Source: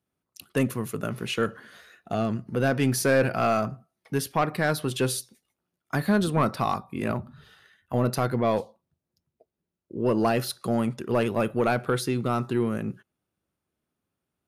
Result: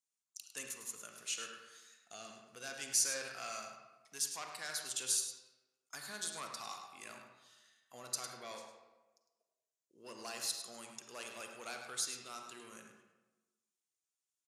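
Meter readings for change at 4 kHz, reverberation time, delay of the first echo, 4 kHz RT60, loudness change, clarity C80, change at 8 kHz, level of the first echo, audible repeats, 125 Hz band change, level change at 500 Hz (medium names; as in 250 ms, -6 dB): -5.5 dB, 1.2 s, 104 ms, 0.75 s, -13.5 dB, 5.0 dB, +0.5 dB, -9.0 dB, 1, -37.0 dB, -25.5 dB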